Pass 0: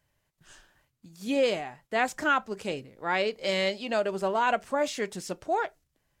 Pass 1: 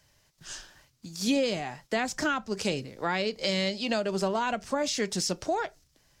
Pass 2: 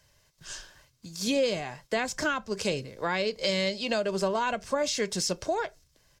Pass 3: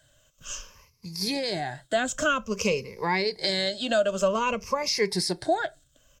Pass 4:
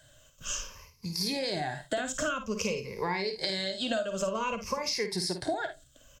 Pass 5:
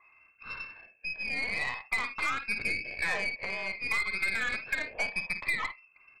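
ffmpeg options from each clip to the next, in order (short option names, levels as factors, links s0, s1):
-filter_complex "[0:a]equalizer=f=5300:w=1.2:g=11,acrossover=split=230[s0][s1];[s1]acompressor=threshold=0.0178:ratio=5[s2];[s0][s2]amix=inputs=2:normalize=0,volume=2.37"
-af "aecho=1:1:1.9:0.32"
-af "afftfilt=real='re*pow(10,15/40*sin(2*PI*(0.83*log(max(b,1)*sr/1024/100)/log(2)-(-0.52)*(pts-256)/sr)))':imag='im*pow(10,15/40*sin(2*PI*(0.83*log(max(b,1)*sr/1024/100)/log(2)-(-0.52)*(pts-256)/sr)))':win_size=1024:overlap=0.75"
-af "acompressor=threshold=0.0251:ratio=6,aecho=1:1:52|75:0.376|0.133,volume=1.41"
-af "lowpass=f=2300:t=q:w=0.5098,lowpass=f=2300:t=q:w=0.6013,lowpass=f=2300:t=q:w=0.9,lowpass=f=2300:t=q:w=2.563,afreqshift=-2700,aeval=exprs='0.133*(cos(1*acos(clip(val(0)/0.133,-1,1)))-cos(1*PI/2))+0.0119*(cos(8*acos(clip(val(0)/0.133,-1,1)))-cos(8*PI/2))':c=same"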